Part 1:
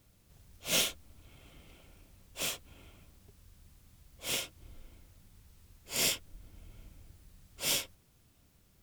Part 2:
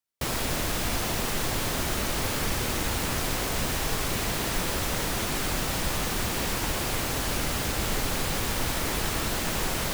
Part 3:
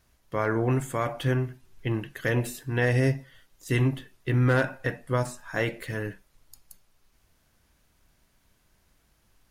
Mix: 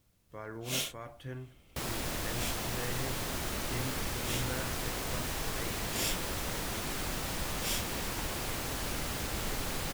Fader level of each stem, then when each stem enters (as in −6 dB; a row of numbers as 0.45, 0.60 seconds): −5.0, −7.5, −17.0 decibels; 0.00, 1.55, 0.00 seconds